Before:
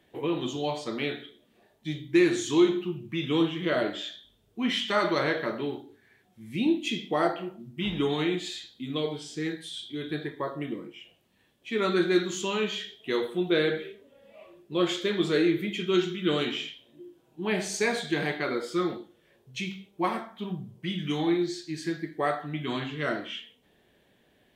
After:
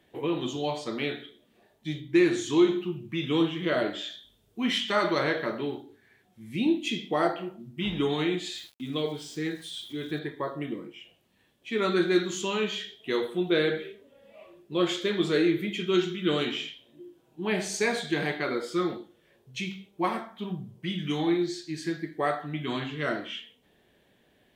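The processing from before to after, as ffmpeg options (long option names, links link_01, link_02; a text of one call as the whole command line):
ffmpeg -i in.wav -filter_complex "[0:a]asettb=1/sr,asplit=3[link_01][link_02][link_03];[link_01]atrim=end=2.004[link_04];[link_02]atrim=start=2:end=2.69,asetpts=PTS-STARTPTS,afade=type=in:duration=0.004:curve=qsin,afade=type=out:start_time=0.686:duration=0.004:curve=qsin,highshelf=frequency=4500:gain=-4[link_05];[link_03]atrim=start=2.686[link_06];[link_04][link_05]acrossfade=duration=0.004:curve1=hsin:curve2=qsin[link_07];[link_07][link_06]acrossfade=duration=0.004:curve1=qsin:curve2=hsin,asettb=1/sr,asplit=3[link_08][link_09][link_10];[link_08]atrim=end=4.104[link_11];[link_09]atrim=start=4.1:end=4.78,asetpts=PTS-STARTPTS,afade=type=in:duration=0.004:curve=qsin,afade=type=out:start_time=0.676:duration=0.004:curve=qsin,highshelf=frequency=5100:gain=5[link_12];[link_10]atrim=start=4.776[link_13];[link_11][link_12]acrossfade=duration=0.004:curve1=hsin:curve2=qsin[link_14];[link_14][link_13]acrossfade=duration=0.004:curve1=qsin:curve2=hsin,asettb=1/sr,asplit=3[link_15][link_16][link_17];[link_15]atrim=end=8.554[link_18];[link_16]atrim=start=8.55:end=10.19,asetpts=PTS-STARTPTS,afade=type=in:duration=0.004:curve=qsin,afade=type=out:start_time=1.636:duration=0.004:curve=qsin,aeval=exprs='val(0)*gte(abs(val(0)),0.00316)':channel_layout=same[link_19];[link_17]atrim=start=10.186[link_20];[link_18][link_19]acrossfade=duration=0.004:curve1=hsin:curve2=qsin[link_21];[link_21][link_20]acrossfade=duration=0.004:curve1=qsin:curve2=hsin" out.wav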